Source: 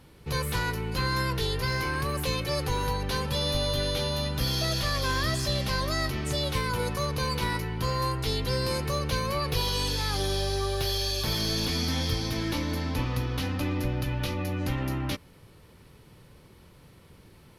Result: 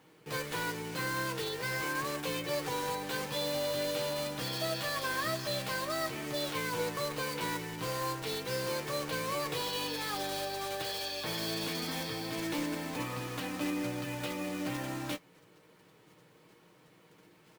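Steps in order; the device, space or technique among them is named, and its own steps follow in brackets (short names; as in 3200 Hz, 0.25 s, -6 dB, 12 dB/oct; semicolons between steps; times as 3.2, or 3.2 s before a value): early digital voice recorder (BPF 240–3400 Hz; block floating point 3-bit); comb 6.4 ms, depth 47%; doubler 17 ms -11 dB; gain -4 dB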